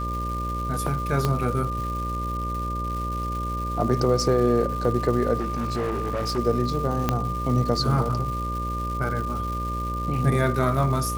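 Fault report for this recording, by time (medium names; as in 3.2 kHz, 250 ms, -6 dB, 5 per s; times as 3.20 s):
buzz 60 Hz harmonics 10 -30 dBFS
crackle 470 per s -33 dBFS
whine 1.2 kHz -29 dBFS
1.25 s: pop -10 dBFS
5.39–6.39 s: clipped -22.5 dBFS
7.09 s: pop -8 dBFS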